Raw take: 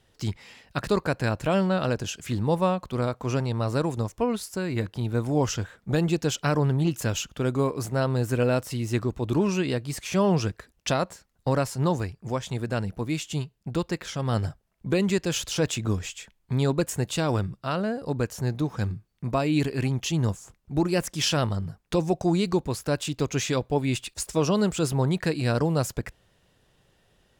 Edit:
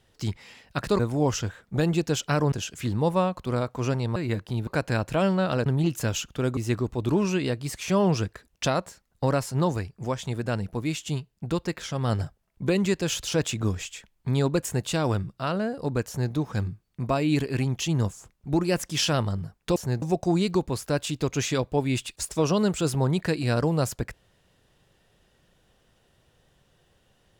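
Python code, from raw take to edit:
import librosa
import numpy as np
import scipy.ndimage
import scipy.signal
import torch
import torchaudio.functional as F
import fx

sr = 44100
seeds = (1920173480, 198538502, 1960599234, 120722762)

y = fx.edit(x, sr, fx.swap(start_s=0.99, length_s=0.99, other_s=5.14, other_length_s=1.53),
    fx.cut(start_s=3.62, length_s=1.01),
    fx.cut(start_s=7.58, length_s=1.23),
    fx.duplicate(start_s=18.31, length_s=0.26, to_s=22.0), tone=tone)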